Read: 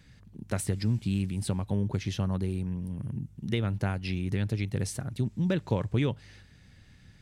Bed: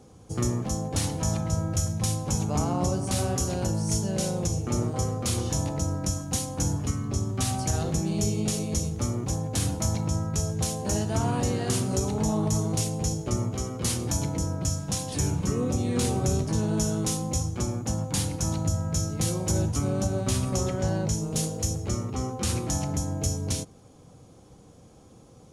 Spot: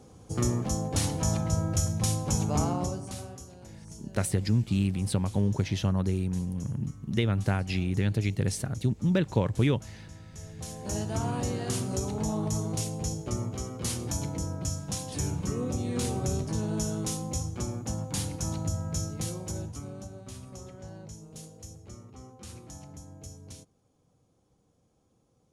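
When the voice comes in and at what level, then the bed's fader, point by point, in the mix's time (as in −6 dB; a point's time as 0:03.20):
3.65 s, +2.5 dB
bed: 0:02.65 −0.5 dB
0:03.51 −20.5 dB
0:10.26 −20.5 dB
0:10.99 −4.5 dB
0:19.04 −4.5 dB
0:20.21 −17.5 dB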